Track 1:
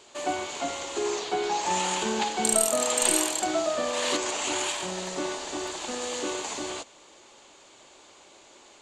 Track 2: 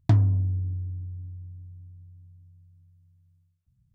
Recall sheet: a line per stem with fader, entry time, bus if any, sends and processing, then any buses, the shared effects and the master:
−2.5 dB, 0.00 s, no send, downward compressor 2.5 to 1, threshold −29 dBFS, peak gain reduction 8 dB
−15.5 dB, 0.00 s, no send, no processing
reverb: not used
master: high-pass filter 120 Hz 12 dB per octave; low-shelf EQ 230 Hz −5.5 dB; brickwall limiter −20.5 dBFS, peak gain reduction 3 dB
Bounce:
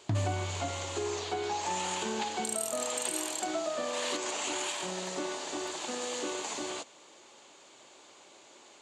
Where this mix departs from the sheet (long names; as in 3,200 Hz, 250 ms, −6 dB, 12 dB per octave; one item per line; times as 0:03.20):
stem 2 −15.5 dB → −6.5 dB
master: missing low-shelf EQ 230 Hz −5.5 dB